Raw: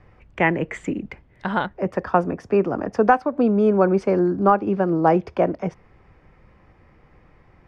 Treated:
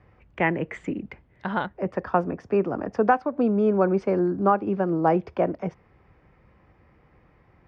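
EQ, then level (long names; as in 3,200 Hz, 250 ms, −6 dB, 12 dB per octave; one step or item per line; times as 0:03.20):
high-pass filter 45 Hz
high-frequency loss of the air 86 metres
−3.5 dB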